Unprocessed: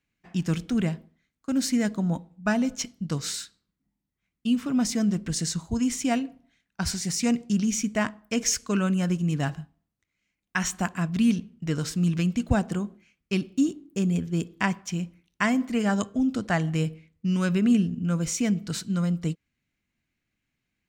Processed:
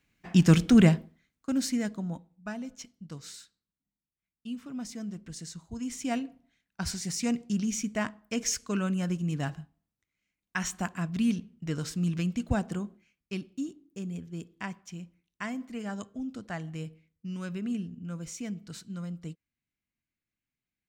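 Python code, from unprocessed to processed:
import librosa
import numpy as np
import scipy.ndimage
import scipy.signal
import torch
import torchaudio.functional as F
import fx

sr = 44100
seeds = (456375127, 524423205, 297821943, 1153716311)

y = fx.gain(x, sr, db=fx.line((0.89, 7.0), (1.56, -3.0), (2.53, -13.5), (5.64, -13.5), (6.17, -5.0), (12.84, -5.0), (13.68, -12.0)))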